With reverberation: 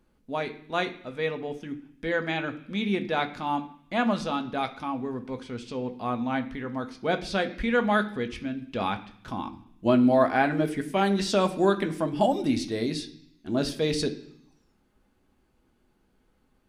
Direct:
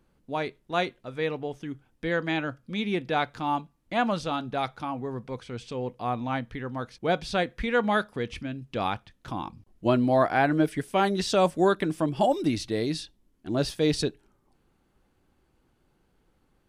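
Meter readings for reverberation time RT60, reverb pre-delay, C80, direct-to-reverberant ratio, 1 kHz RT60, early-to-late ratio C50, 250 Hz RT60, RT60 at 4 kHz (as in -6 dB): 0.65 s, 3 ms, 17.0 dB, 5.5 dB, 0.75 s, 14.0 dB, 0.95 s, 1.1 s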